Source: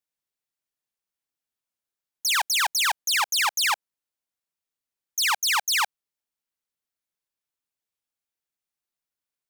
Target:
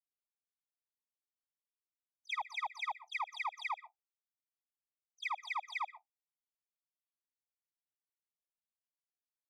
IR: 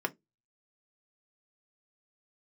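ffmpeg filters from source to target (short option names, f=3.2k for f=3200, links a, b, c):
-filter_complex "[0:a]lowpass=1.4k,agate=range=-20dB:threshold=-42dB:ratio=16:detection=peak,acompressor=threshold=-39dB:ratio=12,asplit=2[a][b];[1:a]atrim=start_sample=2205,asetrate=61740,aresample=44100,adelay=125[c];[b][c]afir=irnorm=-1:irlink=0,volume=-20dB[d];[a][d]amix=inputs=2:normalize=0,afftfilt=real='re*eq(mod(floor(b*sr/1024/640),2),1)':imag='im*eq(mod(floor(b*sr/1024/640),2),1)':win_size=1024:overlap=0.75,volume=5dB"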